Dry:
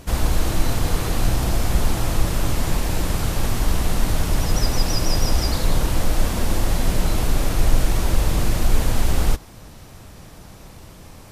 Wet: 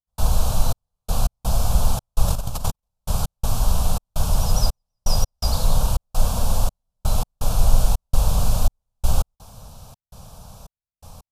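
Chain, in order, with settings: 2.28–2.88 negative-ratio compressor -22 dBFS, ratio -0.5; step gate ".xxx..x.xxx" 83 bpm -60 dB; fixed phaser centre 810 Hz, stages 4; gain +1.5 dB

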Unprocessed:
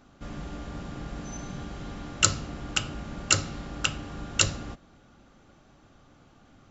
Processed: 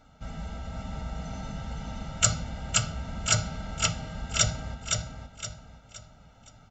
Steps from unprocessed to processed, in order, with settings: comb 1.6 ms, depth 88%; formant-preserving pitch shift +2 st; feedback echo 0.517 s, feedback 36%, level -4.5 dB; gain -2.5 dB

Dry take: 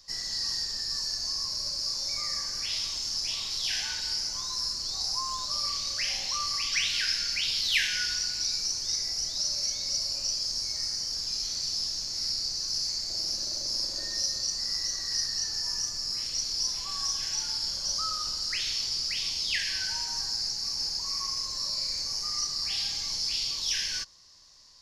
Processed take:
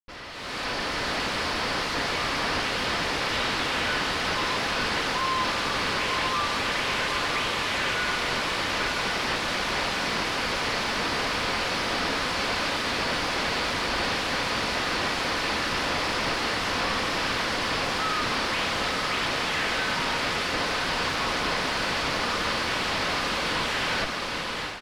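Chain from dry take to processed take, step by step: tracing distortion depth 0.42 ms; HPF 110 Hz; low shelf 420 Hz -11 dB; comb 4 ms, depth 38%; Schmitt trigger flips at -38.5 dBFS; LPF 3700 Hz 12 dB/oct; notch 760 Hz, Q 21; on a send: diffused feedback echo 0.943 s, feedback 69%, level -4 dB; on the sum: AGC gain up to 13.5 dB; gain -7 dB

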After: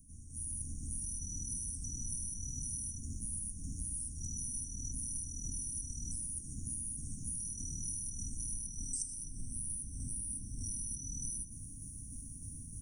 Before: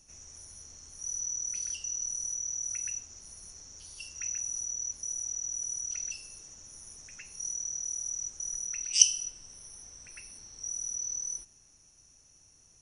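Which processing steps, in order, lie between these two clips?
Chebyshev band-stop 270–9000 Hz, order 4; AGC gain up to 16 dB; tremolo saw down 3.3 Hz, depth 35%; compressor 10:1, threshold -45 dBFS, peak gain reduction 22.5 dB; on a send: darkening echo 0.118 s, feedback 55%, low-pass 4600 Hz, level -9.5 dB; on the sum: gain +8.5 dB

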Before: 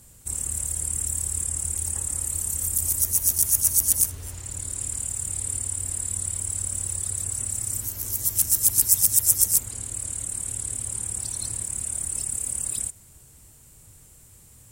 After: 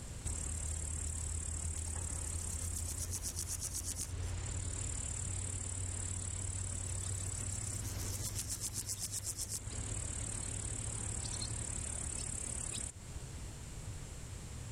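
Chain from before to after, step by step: LPF 4800 Hz 12 dB/oct; compressor 12:1, threshold -45 dBFS, peak gain reduction 20 dB; reverse echo 0.991 s -15.5 dB; gain +8.5 dB

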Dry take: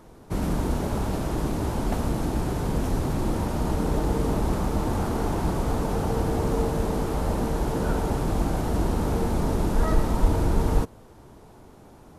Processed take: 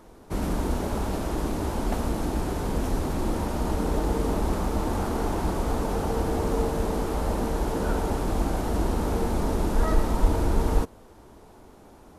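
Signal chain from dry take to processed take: bell 130 Hz -8 dB 0.75 oct

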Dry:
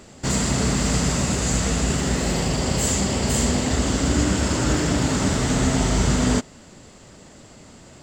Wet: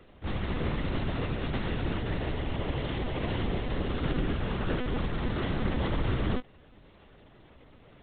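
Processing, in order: monotone LPC vocoder at 8 kHz 250 Hz; gain -8.5 dB

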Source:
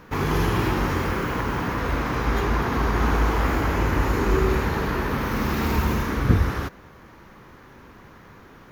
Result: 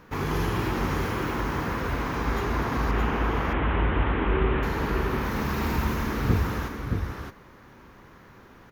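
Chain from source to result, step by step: 2.91–4.63 delta modulation 16 kbps, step -26 dBFS; echo 0.619 s -5 dB; gain -4.5 dB

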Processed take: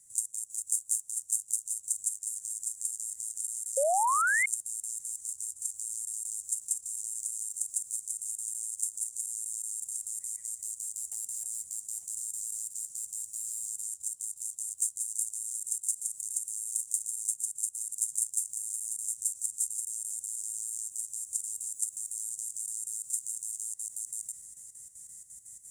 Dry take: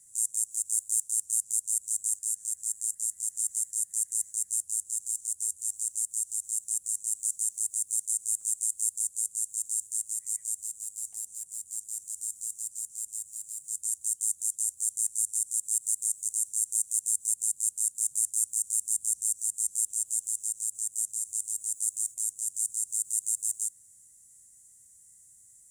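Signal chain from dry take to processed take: reverse delay 0.579 s, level -7 dB; compressor 4:1, threshold -31 dBFS, peak gain reduction 9 dB; delay with a stepping band-pass 0.311 s, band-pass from 570 Hz, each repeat 0.7 oct, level -7 dB; painted sound rise, 3.77–4.46, 520–2200 Hz -28 dBFS; level quantiser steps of 11 dB; gain +7 dB

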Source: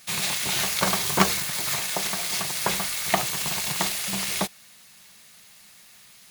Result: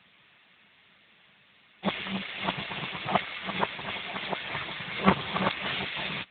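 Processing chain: whole clip reversed; AMR-NB 10.2 kbps 8000 Hz

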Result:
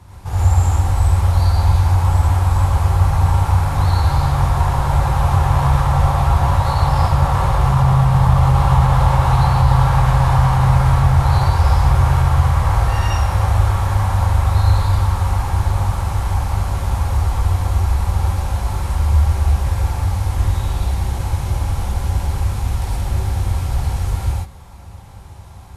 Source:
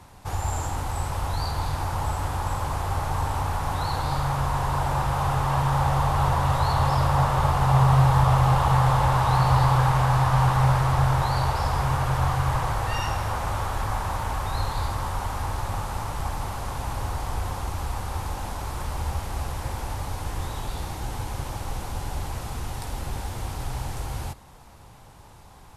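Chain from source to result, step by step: bell 70 Hz +13.5 dB 1.7 oct; limiter -8 dBFS, peak gain reduction 7.5 dB; non-linear reverb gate 0.14 s rising, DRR -5.5 dB; gain -1.5 dB

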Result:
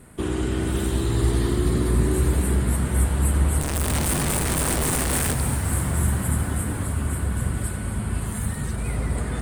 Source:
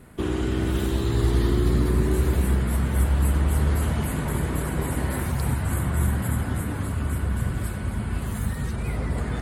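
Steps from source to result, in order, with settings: 3.61–5.34 infinite clipping; bell 8800 Hz +11.5 dB 0.38 oct; reverb RT60 5.7 s, pre-delay 78 ms, DRR 8.5 dB

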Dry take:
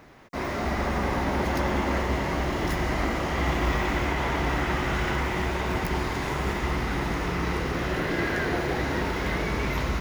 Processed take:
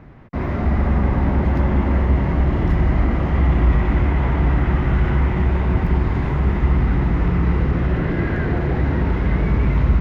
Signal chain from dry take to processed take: bell 15000 Hz -9 dB 2 oct; in parallel at +1 dB: limiter -21 dBFS, peak gain reduction 8 dB; on the sum: tone controls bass +13 dB, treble -13 dB; gain -4.5 dB

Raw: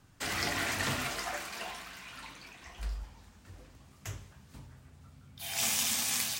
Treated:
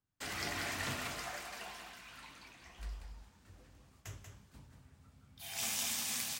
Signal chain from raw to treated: gate with hold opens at -47 dBFS; on a send: echo 0.187 s -6.5 dB; on the sum: gain -7 dB

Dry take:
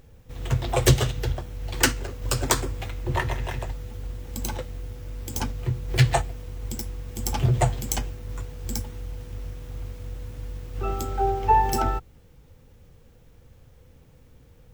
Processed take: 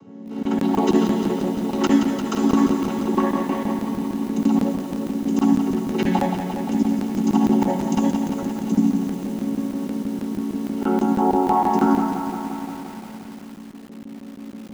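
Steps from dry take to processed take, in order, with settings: chord vocoder minor triad, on F#3; low shelf 250 Hz -7 dB; compressor 2:1, threshold -38 dBFS, peak gain reduction 13.5 dB; high shelf 2200 Hz -10.5 dB; tape echo 0.206 s, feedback 40%, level -16.5 dB, low-pass 2100 Hz; reverb RT60 0.70 s, pre-delay 54 ms, DRR 1.5 dB; crackling interface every 0.16 s, samples 1024, zero, from 0.43; lo-fi delay 0.174 s, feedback 80%, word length 8-bit, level -7 dB; gain +6.5 dB

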